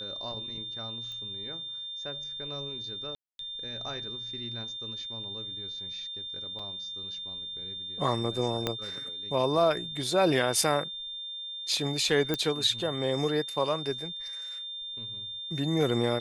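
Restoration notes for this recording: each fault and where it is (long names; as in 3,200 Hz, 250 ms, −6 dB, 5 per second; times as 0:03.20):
whistle 3,600 Hz −36 dBFS
0:01.12: click −29 dBFS
0:03.15–0:03.39: drop-out 242 ms
0:06.59: drop-out 4.5 ms
0:08.67: click −13 dBFS
0:12.34: click −14 dBFS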